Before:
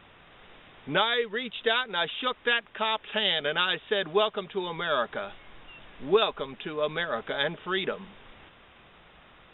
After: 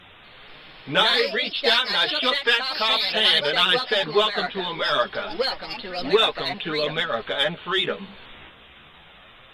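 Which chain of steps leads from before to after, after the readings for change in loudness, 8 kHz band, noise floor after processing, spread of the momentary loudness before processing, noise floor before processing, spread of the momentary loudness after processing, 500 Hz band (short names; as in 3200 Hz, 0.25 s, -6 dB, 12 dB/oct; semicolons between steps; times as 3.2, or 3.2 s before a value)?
+6.5 dB, n/a, -49 dBFS, 9 LU, -55 dBFS, 9 LU, +4.0 dB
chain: high shelf 3100 Hz +12 dB; in parallel at -7 dB: soft clip -20 dBFS, distortion -9 dB; on the sum: vibrato 14 Hz 34 cents; chorus voices 2, 0.3 Hz, delay 11 ms, depth 4.8 ms; echoes that change speed 0.238 s, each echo +3 st, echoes 2, each echo -6 dB; gain +3.5 dB; MP3 112 kbps 32000 Hz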